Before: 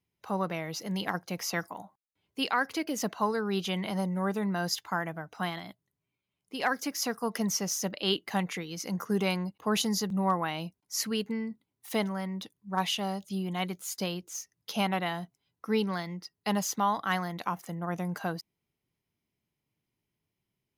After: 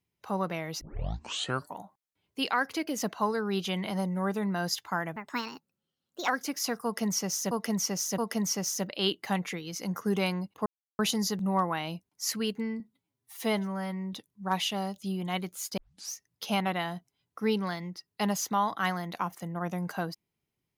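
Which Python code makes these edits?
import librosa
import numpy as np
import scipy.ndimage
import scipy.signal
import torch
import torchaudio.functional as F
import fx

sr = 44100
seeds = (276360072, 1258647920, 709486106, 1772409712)

y = fx.edit(x, sr, fx.tape_start(start_s=0.81, length_s=0.97),
    fx.speed_span(start_s=5.16, length_s=1.5, speed=1.34),
    fx.repeat(start_s=7.22, length_s=0.67, count=3),
    fx.insert_silence(at_s=9.7, length_s=0.33),
    fx.stretch_span(start_s=11.51, length_s=0.89, factor=1.5),
    fx.tape_start(start_s=14.04, length_s=0.35), tone=tone)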